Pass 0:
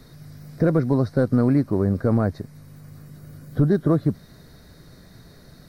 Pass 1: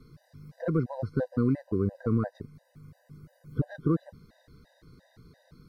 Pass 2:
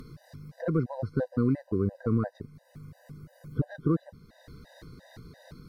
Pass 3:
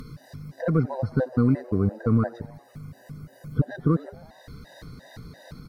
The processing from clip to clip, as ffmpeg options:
-af "highshelf=f=4.5k:g=-9.5,afftfilt=real='re*gt(sin(2*PI*2.9*pts/sr)*(1-2*mod(floor(b*sr/1024/510),2)),0)':imag='im*gt(sin(2*PI*2.9*pts/sr)*(1-2*mod(floor(b*sr/1024/510),2)),0)':win_size=1024:overlap=0.75,volume=-5.5dB"
-af "acompressor=mode=upward:threshold=-39dB:ratio=2.5"
-filter_complex "[0:a]equalizer=f=360:t=o:w=0.39:g=-7.5,asplit=6[a][b][c][d][e][f];[b]adelay=89,afreqshift=120,volume=-23dB[g];[c]adelay=178,afreqshift=240,volume=-27dB[h];[d]adelay=267,afreqshift=360,volume=-31dB[i];[e]adelay=356,afreqshift=480,volume=-35dB[j];[f]adelay=445,afreqshift=600,volume=-39.1dB[k];[a][g][h][i][j][k]amix=inputs=6:normalize=0,volume=6dB"

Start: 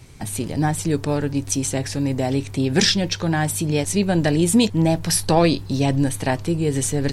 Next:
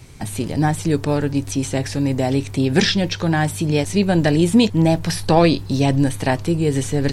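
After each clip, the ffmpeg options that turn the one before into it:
-filter_complex "[0:a]acrossover=split=4300[a][b];[b]acompressor=threshold=-32dB:ratio=4:attack=1:release=60[c];[a][c]amix=inputs=2:normalize=0,volume=2.5dB"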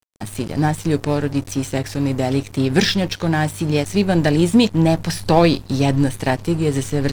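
-af "aeval=exprs='sgn(val(0))*max(abs(val(0))-0.0224,0)':c=same,volume=1dB"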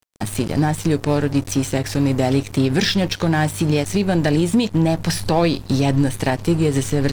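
-filter_complex "[0:a]asplit=2[a][b];[b]acompressor=threshold=-23dB:ratio=6,volume=1dB[c];[a][c]amix=inputs=2:normalize=0,alimiter=limit=-6.5dB:level=0:latency=1:release=97,volume=-1.5dB"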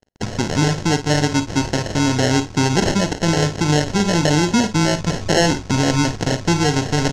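-filter_complex "[0:a]acrusher=samples=37:mix=1:aa=0.000001,lowpass=f=6.1k:t=q:w=2.7,asplit=2[a][b];[b]aecho=0:1:40|54:0.188|0.237[c];[a][c]amix=inputs=2:normalize=0"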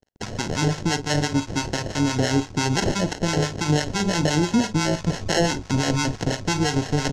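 -filter_complex "[0:a]acrossover=split=710[a][b];[a]aeval=exprs='val(0)*(1-0.7/2+0.7/2*cos(2*PI*5.9*n/s))':c=same[c];[b]aeval=exprs='val(0)*(1-0.7/2-0.7/2*cos(2*PI*5.9*n/s))':c=same[d];[c][d]amix=inputs=2:normalize=0,volume=-1.5dB"

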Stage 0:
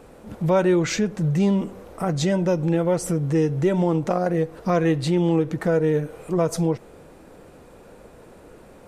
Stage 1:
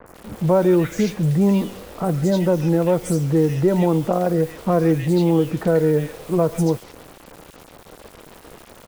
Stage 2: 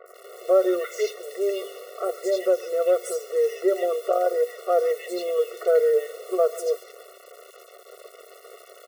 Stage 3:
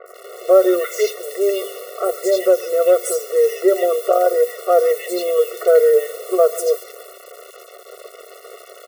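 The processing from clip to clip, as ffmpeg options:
-filter_complex "[0:a]acrossover=split=310|850[a][b][c];[c]alimiter=limit=-23.5dB:level=0:latency=1:release=250[d];[a][b][d]amix=inputs=3:normalize=0,acrusher=bits=6:mix=0:aa=0.000001,acrossover=split=1900|6000[e][f][g];[g]adelay=60[h];[f]adelay=140[i];[e][i][h]amix=inputs=3:normalize=0,volume=3dB"
-af "afftfilt=real='re*eq(mod(floor(b*sr/1024/370),2),1)':imag='im*eq(mod(floor(b*sr/1024/370),2),1)':win_size=1024:overlap=0.75"
-af "adynamicequalizer=threshold=0.00282:dfrequency=7800:dqfactor=0.7:tfrequency=7800:tqfactor=0.7:attack=5:release=100:ratio=0.375:range=3.5:mode=boostabove:tftype=highshelf,volume=7dB"

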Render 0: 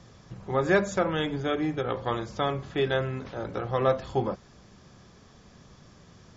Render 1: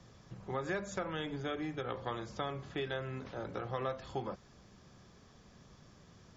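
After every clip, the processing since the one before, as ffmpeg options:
-filter_complex "[0:a]acrossover=split=100|1000[a][b][c];[a]acompressor=threshold=-49dB:ratio=4[d];[b]acompressor=threshold=-31dB:ratio=4[e];[c]acompressor=threshold=-34dB:ratio=4[f];[d][e][f]amix=inputs=3:normalize=0,volume=-6dB"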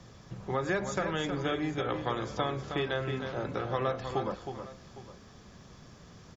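-af "aecho=1:1:316|808:0.422|0.133,volume=6dB"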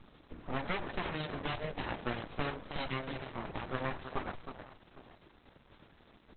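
-af "aeval=exprs='abs(val(0))':c=same" -ar 48000 -c:a libopus -b:a 8k

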